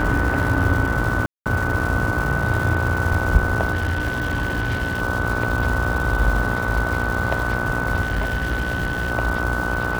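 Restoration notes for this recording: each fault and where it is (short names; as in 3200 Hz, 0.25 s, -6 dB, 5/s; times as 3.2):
buzz 60 Hz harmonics 26 -27 dBFS
crackle 540/s -27 dBFS
tone 1500 Hz -26 dBFS
1.26–1.46 gap 0.198 s
3.73–5.02 clipped -18 dBFS
8.01–9.12 clipped -18 dBFS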